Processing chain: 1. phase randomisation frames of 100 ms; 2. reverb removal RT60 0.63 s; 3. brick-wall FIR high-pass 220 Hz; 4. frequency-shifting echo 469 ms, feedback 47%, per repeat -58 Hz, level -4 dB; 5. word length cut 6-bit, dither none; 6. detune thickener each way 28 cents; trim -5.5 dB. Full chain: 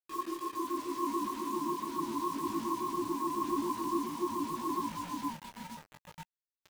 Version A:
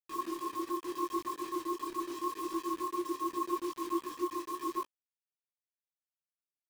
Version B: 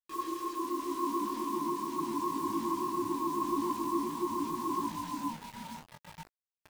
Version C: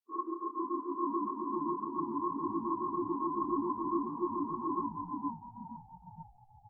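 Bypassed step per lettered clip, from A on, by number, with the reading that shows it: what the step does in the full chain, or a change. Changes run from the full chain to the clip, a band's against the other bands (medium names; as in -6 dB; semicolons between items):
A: 4, momentary loudness spread change -11 LU; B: 2, 2 kHz band -1.5 dB; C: 5, distortion -15 dB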